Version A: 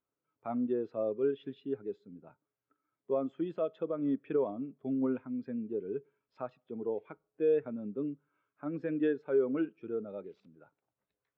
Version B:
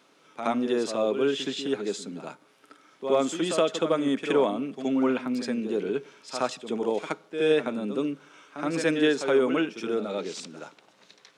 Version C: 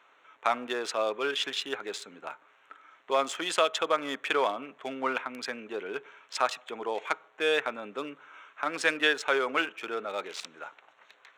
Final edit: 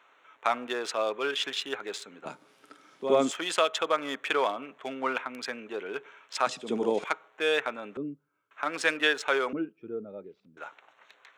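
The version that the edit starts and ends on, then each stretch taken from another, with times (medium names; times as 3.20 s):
C
2.26–3.31 s: from B
6.47–7.04 s: from B
7.97–8.51 s: from A
9.53–10.57 s: from A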